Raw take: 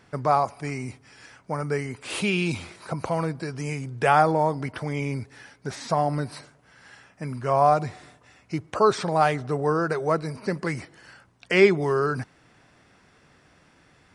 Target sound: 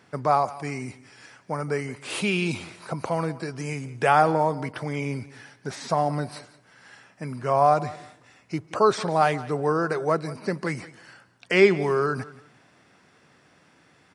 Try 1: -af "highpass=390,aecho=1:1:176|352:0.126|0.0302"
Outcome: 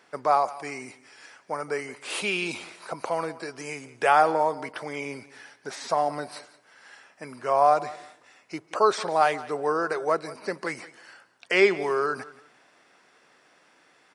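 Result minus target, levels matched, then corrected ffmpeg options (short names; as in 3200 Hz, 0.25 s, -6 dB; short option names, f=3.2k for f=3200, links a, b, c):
125 Hz band -14.0 dB
-af "highpass=120,aecho=1:1:176|352:0.126|0.0302"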